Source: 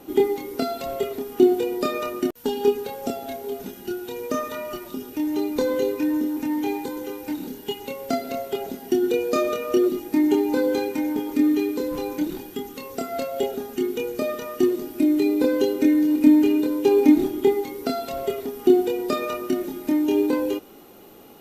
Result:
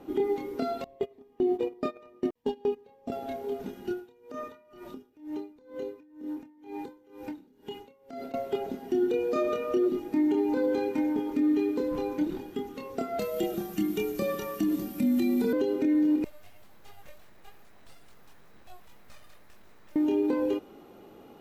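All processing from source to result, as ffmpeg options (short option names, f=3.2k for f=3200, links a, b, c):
-filter_complex "[0:a]asettb=1/sr,asplit=3[a][b][c];[a]atrim=end=0.844[d];[b]atrim=start=0.84:end=3.12,asetpts=PTS-STARTPTS,afade=t=in:d=0.004:c=qsin,afade=t=out:st=2.276:d=0.004:c=qsin,asuperstop=centerf=1400:order=4:qfactor=4.8,highshelf=f=5.4k:g=-6,agate=range=-21dB:threshold=-25dB:ratio=16:release=100:detection=peak[e];[c]atrim=start=3.116[f];[d][e]acrossfade=d=0.004:c1=hsin:c2=qsin[g];[g][f]acrossfade=d=0.004:c1=qsin:c2=hsin,asettb=1/sr,asplit=3[h][i][j];[h]atrim=end=3.934[k];[i]atrim=start=3.93:end=8.34,asetpts=PTS-STARTPTS,afade=t=in:d=0.004:c=qsin,afade=t=out:st=4.406:d=0.004:c=qsin,acompressor=threshold=-28dB:ratio=6:attack=3.2:release=140:knee=1:detection=peak,aeval=exprs='val(0)*pow(10,-25*(0.5-0.5*cos(2*PI*2.1*n/s))/20)':c=same[l];[j]atrim=start=8.336[m];[k][l]acrossfade=d=0.004:c1=hsin:c2=qsin[n];[n][m]acrossfade=d=0.004:c1=qsin:c2=hsin,asettb=1/sr,asplit=3[o][p][q];[o]atrim=end=13.194[r];[p]atrim=start=13.19:end=15.53,asetpts=PTS-STARTPTS,afade=t=in:d=0.004:c=qsin,afade=t=out:st=2.336:d=0.004:c=qsin,aemphasis=mode=production:type=75kf,afreqshift=-55[s];[q]atrim=start=15.526[t];[r][s]acrossfade=d=0.004:c1=hsin:c2=qsin[u];[u][t]acrossfade=d=0.004:c1=qsin:c2=hsin,asettb=1/sr,asplit=3[v][w][x];[v]atrim=end=16.244[y];[w]atrim=start=16.24:end=19.96,asetpts=PTS-STARTPTS,afade=t=in:d=0.004:c=qsin,afade=t=out:st=3.716:d=0.004:c=qsin,aderivative,flanger=delay=16.5:depth=4.3:speed=2.8,aeval=exprs='abs(val(0))':c=same[z];[x]atrim=start=19.956[aa];[y][z]acrossfade=d=0.004:c1=hsin:c2=qsin[ab];[ab][aa]acrossfade=d=0.004:c1=qsin:c2=hsin,lowpass=f=1.9k:p=1,alimiter=limit=-16dB:level=0:latency=1:release=95,volume=-2.5dB"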